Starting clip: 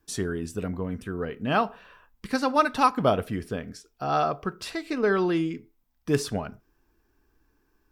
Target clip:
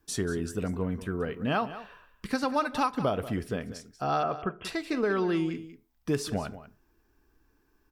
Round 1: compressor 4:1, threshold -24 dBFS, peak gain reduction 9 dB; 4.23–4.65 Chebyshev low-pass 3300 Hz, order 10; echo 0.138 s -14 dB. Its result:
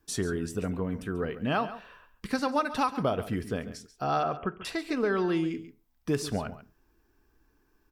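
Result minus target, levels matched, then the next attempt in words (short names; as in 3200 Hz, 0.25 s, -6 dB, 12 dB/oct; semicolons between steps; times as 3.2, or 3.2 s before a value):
echo 50 ms early
compressor 4:1, threshold -24 dBFS, peak gain reduction 9 dB; 4.23–4.65 Chebyshev low-pass 3300 Hz, order 10; echo 0.188 s -14 dB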